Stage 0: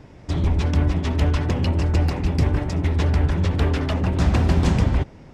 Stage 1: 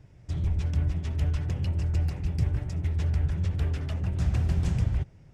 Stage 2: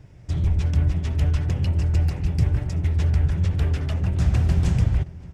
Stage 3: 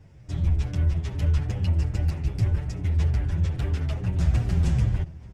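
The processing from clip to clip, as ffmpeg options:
-af "equalizer=f=125:t=o:w=1:g=5,equalizer=f=250:t=o:w=1:g=-10,equalizer=f=500:t=o:w=1:g=-5,equalizer=f=1000:t=o:w=1:g=-9,equalizer=f=2000:t=o:w=1:g=-3,equalizer=f=4000:t=o:w=1:g=-6,volume=0.422"
-filter_complex "[0:a]asplit=2[s0][s1];[s1]adelay=571.4,volume=0.1,highshelf=f=4000:g=-12.9[s2];[s0][s2]amix=inputs=2:normalize=0,volume=2"
-filter_complex "[0:a]asplit=2[s0][s1];[s1]adelay=8.3,afreqshift=-2.4[s2];[s0][s2]amix=inputs=2:normalize=1"

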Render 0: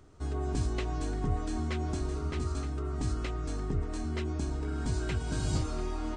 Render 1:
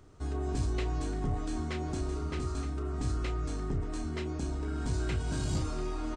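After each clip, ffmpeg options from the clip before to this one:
-filter_complex "[0:a]asoftclip=type=tanh:threshold=0.0668,asplit=2[s0][s1];[s1]adelay=33,volume=0.355[s2];[s0][s2]amix=inputs=2:normalize=0"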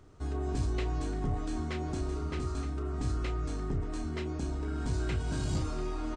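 -af "highshelf=f=7100:g=-4.5"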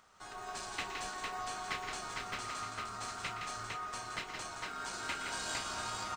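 -filter_complex "[0:a]highpass=f=800:w=0.5412,highpass=f=800:w=1.3066,asplit=2[s0][s1];[s1]acrusher=samples=39:mix=1:aa=0.000001,volume=0.299[s2];[s0][s2]amix=inputs=2:normalize=0,aecho=1:1:118|167|455:0.237|0.531|0.668,volume=1.5"

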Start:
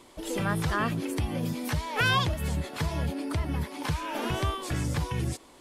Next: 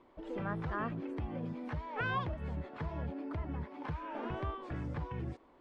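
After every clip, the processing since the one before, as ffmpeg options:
-af "lowpass=1600,equalizer=f=110:w=1.1:g=-3.5,volume=0.422"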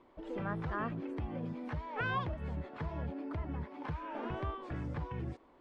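-af anull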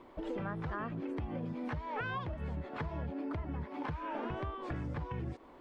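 -af "acompressor=threshold=0.00708:ratio=6,volume=2.37"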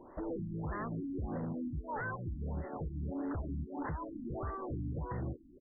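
-af "aresample=16000,aeval=exprs='0.02*(abs(mod(val(0)/0.02+3,4)-2)-1)':c=same,aresample=44100,afftfilt=real='re*lt(b*sr/1024,320*pow(2100/320,0.5+0.5*sin(2*PI*1.6*pts/sr)))':imag='im*lt(b*sr/1024,320*pow(2100/320,0.5+0.5*sin(2*PI*1.6*pts/sr)))':win_size=1024:overlap=0.75,volume=1.26"

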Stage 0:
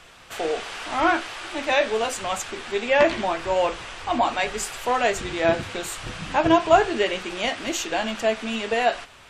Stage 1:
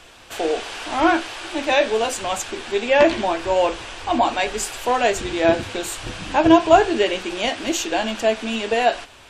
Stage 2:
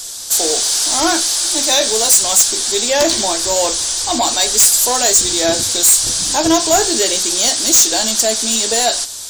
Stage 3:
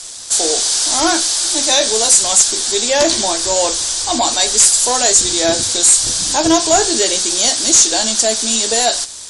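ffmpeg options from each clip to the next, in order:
-af "equalizer=f=160:t=o:w=0.33:g=-8,equalizer=f=315:t=o:w=0.33:g=4,equalizer=f=1250:t=o:w=0.33:g=-5,equalizer=f=2000:t=o:w=0.33:g=-4,volume=1.5"
-af "aexciter=amount=11.5:drive=8.4:freq=4100,acontrast=77,volume=0.562"
-af "aeval=exprs='sgn(val(0))*max(abs(val(0))-0.0178,0)':c=same,volume=1.19" -ar 24000 -c:a libmp3lame -b:a 160k

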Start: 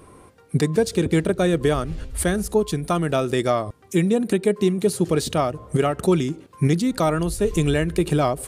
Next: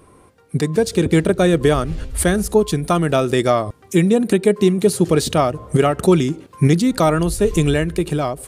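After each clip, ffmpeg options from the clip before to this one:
-af "dynaudnorm=f=120:g=13:m=3.76,volume=0.841"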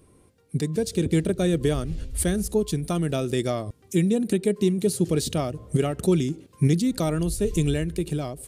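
-af "equalizer=f=1100:w=0.65:g=-11,volume=0.562"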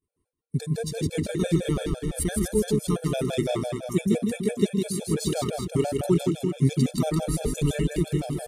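-af "aecho=1:1:160|368|638.4|989.9|1447:0.631|0.398|0.251|0.158|0.1,agate=range=0.0224:threshold=0.00891:ratio=3:detection=peak,afftfilt=real='re*gt(sin(2*PI*5.9*pts/sr)*(1-2*mod(floor(b*sr/1024/450),2)),0)':imag='im*gt(sin(2*PI*5.9*pts/sr)*(1-2*mod(floor(b*sr/1024/450),2)),0)':win_size=1024:overlap=0.75"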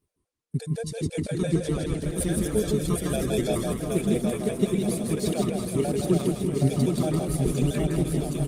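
-af "areverse,acompressor=mode=upward:threshold=0.01:ratio=2.5,areverse,aecho=1:1:770|1348|1781|2105|2349:0.631|0.398|0.251|0.158|0.1,volume=0.841" -ar 48000 -c:a libopus -b:a 24k

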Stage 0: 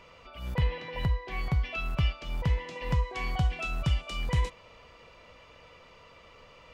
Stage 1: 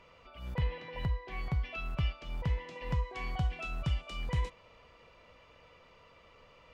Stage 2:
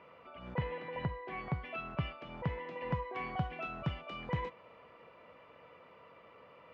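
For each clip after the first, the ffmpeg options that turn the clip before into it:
-af "highshelf=f=5000:g=-5.5,volume=0.562"
-af "highpass=160,lowpass=2000,volume=1.5"

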